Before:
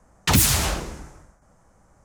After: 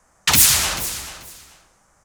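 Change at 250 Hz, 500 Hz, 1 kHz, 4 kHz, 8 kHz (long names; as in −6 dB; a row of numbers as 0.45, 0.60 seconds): −6.0, −3.0, +1.5, +6.5, +7.0 decibels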